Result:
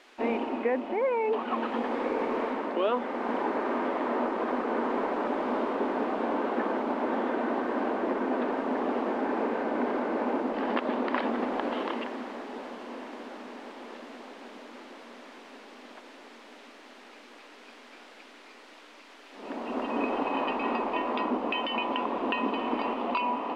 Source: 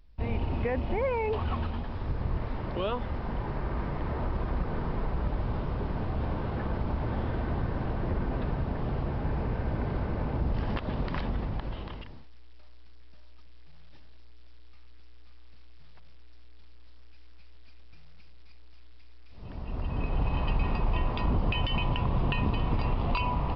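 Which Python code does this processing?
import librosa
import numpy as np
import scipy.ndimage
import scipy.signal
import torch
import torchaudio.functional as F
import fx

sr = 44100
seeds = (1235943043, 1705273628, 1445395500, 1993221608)

p1 = fx.quant_dither(x, sr, seeds[0], bits=8, dither='triangular')
p2 = x + F.gain(torch.from_numpy(p1), -4.0).numpy()
p3 = scipy.signal.sosfilt(scipy.signal.butter(2, 2700.0, 'lowpass', fs=sr, output='sos'), p2)
p4 = fx.wow_flutter(p3, sr, seeds[1], rate_hz=2.1, depth_cents=19.0)
p5 = scipy.signal.sosfilt(scipy.signal.ellip(4, 1.0, 40, 240.0, 'highpass', fs=sr, output='sos'), p4)
p6 = fx.echo_diffused(p5, sr, ms=1085, feedback_pct=62, wet_db=-14.5)
p7 = fx.rider(p6, sr, range_db=5, speed_s=0.5)
y = F.gain(torch.from_numpy(p7), 3.0).numpy()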